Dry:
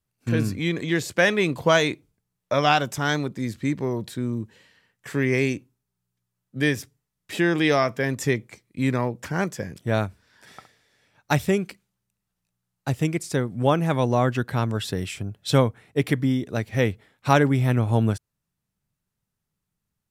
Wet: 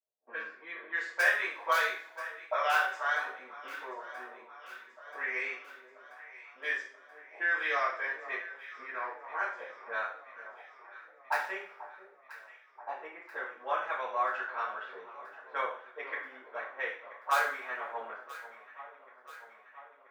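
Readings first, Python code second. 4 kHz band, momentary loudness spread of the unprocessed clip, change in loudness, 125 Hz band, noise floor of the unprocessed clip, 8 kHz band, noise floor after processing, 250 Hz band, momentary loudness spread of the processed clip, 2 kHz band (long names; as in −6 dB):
−13.5 dB, 12 LU, −10.0 dB, below −40 dB, −82 dBFS, below −15 dB, −59 dBFS, −34.0 dB, 22 LU, −3.0 dB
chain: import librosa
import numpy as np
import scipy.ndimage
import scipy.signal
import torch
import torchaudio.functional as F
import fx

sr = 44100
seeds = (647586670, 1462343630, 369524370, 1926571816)

p1 = fx.auto_wah(x, sr, base_hz=660.0, top_hz=1500.0, q=2.6, full_db=-20.0, direction='up')
p2 = fx.high_shelf(p1, sr, hz=5200.0, db=4.5)
p3 = fx.env_lowpass(p2, sr, base_hz=590.0, full_db=-27.5)
p4 = scipy.signal.sosfilt(scipy.signal.butter(4, 8800.0, 'lowpass', fs=sr, output='sos'), p3)
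p5 = (np.mod(10.0 ** (14.5 / 20.0) * p4 + 1.0, 2.0) - 1.0) / 10.0 ** (14.5 / 20.0)
p6 = p4 + (p5 * librosa.db_to_amplitude(-8.0))
p7 = fx.ladder_highpass(p6, sr, hz=430.0, resonance_pct=30)
p8 = fx.echo_alternate(p7, sr, ms=491, hz=1200.0, feedback_pct=78, wet_db=-13.5)
p9 = fx.rev_double_slope(p8, sr, seeds[0], early_s=0.43, late_s=1.6, knee_db=-25, drr_db=-9.0)
y = p9 * librosa.db_to_amplitude(-6.0)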